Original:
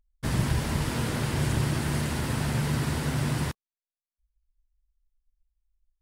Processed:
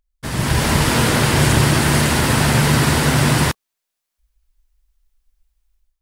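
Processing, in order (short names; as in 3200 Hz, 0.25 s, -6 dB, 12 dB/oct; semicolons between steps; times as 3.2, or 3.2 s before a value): low shelf 320 Hz -6.5 dB; AGC gain up to 12 dB; gain +4.5 dB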